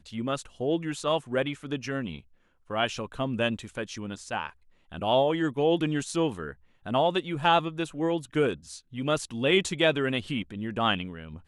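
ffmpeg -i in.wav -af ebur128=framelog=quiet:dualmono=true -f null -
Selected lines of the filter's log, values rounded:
Integrated loudness:
  I:         -25.1 LUFS
  Threshold: -35.6 LUFS
Loudness range:
  LRA:         5.3 LU
  Threshold: -45.5 LUFS
  LRA low:   -29.0 LUFS
  LRA high:  -23.6 LUFS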